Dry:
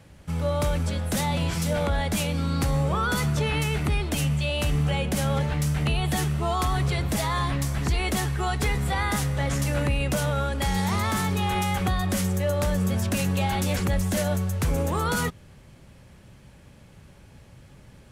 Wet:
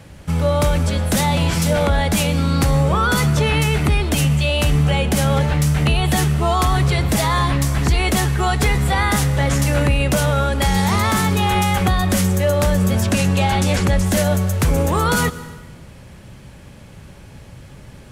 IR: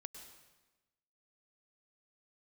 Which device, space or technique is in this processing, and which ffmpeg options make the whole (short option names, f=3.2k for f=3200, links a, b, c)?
compressed reverb return: -filter_complex "[0:a]asettb=1/sr,asplit=3[a][b][c];[a]atrim=end=13.054[d];[b]atrim=start=13.05:end=14.06,asetpts=PTS-STARTPTS,afade=t=in:d=0.004:c=qsin,afade=t=out:st=1.006:d=0.004:c=qsin,lowpass=10k[e];[c]atrim=start=14.056[f];[d][e]acrossfade=d=0.004:c1=hsin:c2=qsin[g];[g][f]acrossfade=d=0.004:c1=qsin:c2=hsin,asplit=2[h][i];[1:a]atrim=start_sample=2205[j];[i][j]afir=irnorm=-1:irlink=0,acompressor=threshold=-32dB:ratio=6,volume=0dB[k];[h][k]amix=inputs=2:normalize=0,volume=6dB"